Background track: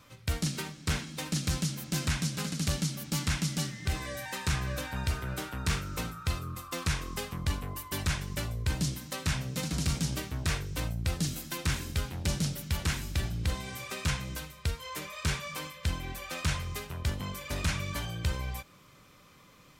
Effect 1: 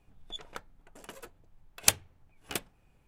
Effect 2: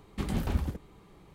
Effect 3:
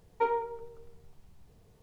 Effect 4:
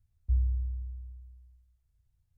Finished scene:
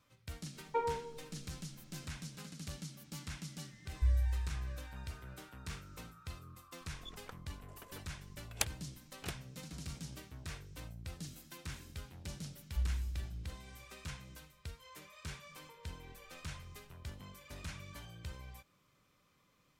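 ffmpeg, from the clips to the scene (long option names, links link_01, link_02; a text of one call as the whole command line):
ffmpeg -i bed.wav -i cue0.wav -i cue1.wav -i cue2.wav -i cue3.wav -filter_complex "[3:a]asplit=2[link_01][link_02];[4:a]asplit=2[link_03][link_04];[0:a]volume=-15dB[link_05];[1:a]highshelf=frequency=5700:gain=-6[link_06];[link_04]aecho=1:1:4.4:0.65[link_07];[link_02]acompressor=threshold=-46dB:ratio=6:attack=3.2:release=140:knee=1:detection=peak[link_08];[link_01]atrim=end=1.82,asetpts=PTS-STARTPTS,volume=-6dB,afade=type=in:duration=0.004:curve=hsin,afade=type=out:start_time=1.816:duration=0.004:curve=hsin,adelay=540[link_09];[link_03]atrim=end=2.37,asetpts=PTS-STARTPTS,volume=-3dB,afade=type=in:duration=0.004:curve=hsin,afade=type=out:start_time=2.366:duration=0.004:curve=hsin,adelay=164493S[link_10];[link_06]atrim=end=3.07,asetpts=PTS-STARTPTS,volume=-8.5dB,afade=type=in:duration=0.004:curve=hsin,afade=type=out:start_time=3.066:duration=0.004:curve=hsin,adelay=6730[link_11];[link_07]atrim=end=2.37,asetpts=PTS-STARTPTS,volume=-8.5dB,afade=type=in:duration=0.004:curve=hsin,afade=type=out:start_time=2.366:duration=0.004:curve=hsin,adelay=12470[link_12];[link_08]atrim=end=1.82,asetpts=PTS-STARTPTS,volume=-12.5dB,afade=type=in:duration=0.004:curve=hsin,afade=type=out:start_time=1.816:duration=0.004:curve=hsin,adelay=15490[link_13];[link_05][link_09][link_10][link_11][link_12][link_13]amix=inputs=6:normalize=0" out.wav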